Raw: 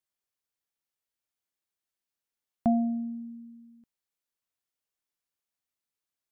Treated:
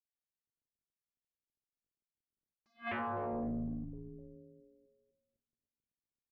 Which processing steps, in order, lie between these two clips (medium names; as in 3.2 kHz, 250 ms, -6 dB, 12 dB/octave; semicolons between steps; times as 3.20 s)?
median filter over 41 samples; distance through air 470 m; algorithmic reverb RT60 2.2 s, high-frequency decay 0.45×, pre-delay 0 ms, DRR 18 dB; dynamic bell 250 Hz, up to -7 dB, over -41 dBFS, Q 5.3; peak limiter -29.5 dBFS, peak gain reduction 9.5 dB; on a send: frequency-shifting echo 254 ms, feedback 58%, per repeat -130 Hz, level -16 dB; on the sum: level-controlled noise filter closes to 350 Hz, open at -33 dBFS; sine folder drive 16 dB, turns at -29 dBFS; 2.82–3.33 s: high-pass 87 Hz; attacks held to a fixed rise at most 300 dB/s; trim -5 dB